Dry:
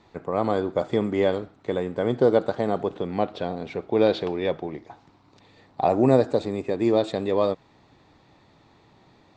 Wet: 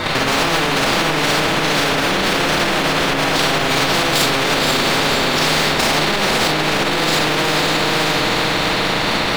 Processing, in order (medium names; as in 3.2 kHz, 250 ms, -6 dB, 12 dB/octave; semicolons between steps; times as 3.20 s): compression 10:1, threshold -22 dBFS, peak gain reduction 11.5 dB; spectral gate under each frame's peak -25 dB strong; power-law waveshaper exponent 0.5; formant-preserving pitch shift +7.5 st; level held to a coarse grid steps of 9 dB; treble shelf 5 kHz -10 dB; echo that smears into a reverb 528 ms, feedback 51%, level -3.5 dB; reverberation RT60 0.45 s, pre-delay 32 ms, DRR -4 dB; loudness maximiser +15 dB; spectrum-flattening compressor 4:1; trim -1 dB